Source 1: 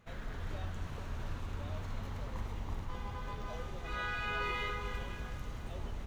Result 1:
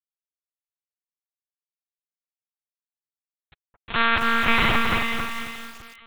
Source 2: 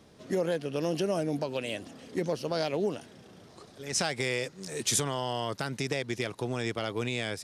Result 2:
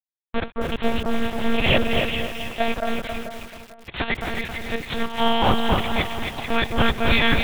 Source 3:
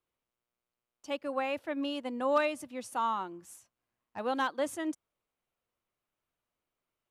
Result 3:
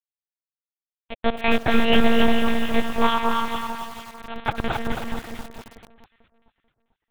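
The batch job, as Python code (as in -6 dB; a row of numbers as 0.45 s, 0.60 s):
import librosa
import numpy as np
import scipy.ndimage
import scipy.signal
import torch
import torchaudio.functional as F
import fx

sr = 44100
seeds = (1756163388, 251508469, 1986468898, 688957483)

p1 = scipy.signal.sosfilt(scipy.signal.butter(2, 130.0, 'highpass', fs=sr, output='sos'), x)
p2 = fx.auto_swell(p1, sr, attack_ms=164.0)
p3 = fx.noise_reduce_blind(p2, sr, reduce_db=20)
p4 = fx.over_compress(p3, sr, threshold_db=-35.0, ratio=-0.5)
p5 = fx.hum_notches(p4, sr, base_hz=60, count=9)
p6 = fx.quant_dither(p5, sr, seeds[0], bits=6, dither='none')
p7 = fx.step_gate(p6, sr, bpm=104, pattern='xxx..xx.x.xxx', floor_db=-12.0, edge_ms=4.5)
p8 = p7 + fx.echo_alternate(p7, sr, ms=222, hz=1500.0, feedback_pct=56, wet_db=-2.5, dry=0)
p9 = fx.lpc_monotone(p8, sr, seeds[1], pitch_hz=230.0, order=8)
p10 = fx.echo_crushed(p9, sr, ms=269, feedback_pct=35, bits=9, wet_db=-4.5)
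y = librosa.util.normalize(p10) * 10.0 ** (-3 / 20.0)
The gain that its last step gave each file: +18.5 dB, +15.5 dB, +17.0 dB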